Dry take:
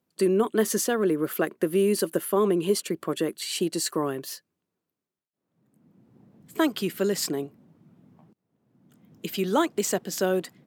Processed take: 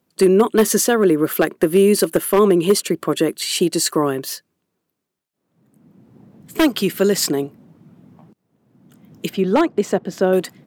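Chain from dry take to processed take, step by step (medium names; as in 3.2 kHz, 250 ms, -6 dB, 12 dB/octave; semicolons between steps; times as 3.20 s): 9.29–10.33 s: low-pass 1.1 kHz 6 dB/octave; wavefolder -14.5 dBFS; trim +9 dB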